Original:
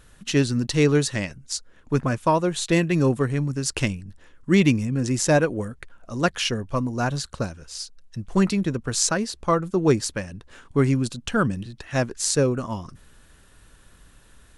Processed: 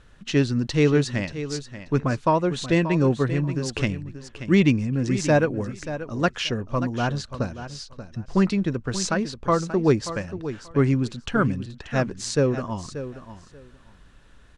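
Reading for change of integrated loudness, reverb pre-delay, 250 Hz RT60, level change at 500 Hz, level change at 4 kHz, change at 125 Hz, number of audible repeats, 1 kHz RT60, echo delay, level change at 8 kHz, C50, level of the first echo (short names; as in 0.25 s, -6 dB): -0.5 dB, none, none, 0.0 dB, -3.0 dB, 0.0 dB, 2, none, 0.583 s, -8.0 dB, none, -12.0 dB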